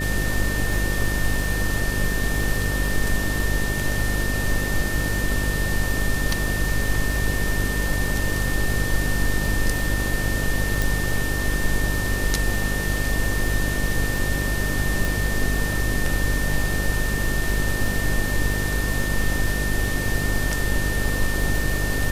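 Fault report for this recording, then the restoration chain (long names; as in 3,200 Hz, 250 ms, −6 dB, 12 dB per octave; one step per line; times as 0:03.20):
mains buzz 50 Hz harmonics 12 −26 dBFS
surface crackle 32 per second −27 dBFS
whistle 1,800 Hz −28 dBFS
0:10.82: click
0:15.05: click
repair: click removal
notch filter 1,800 Hz, Q 30
hum removal 50 Hz, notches 12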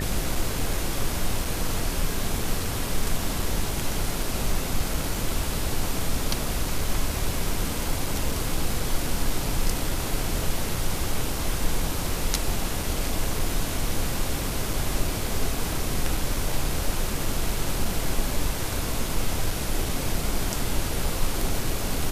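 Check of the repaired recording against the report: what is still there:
none of them is left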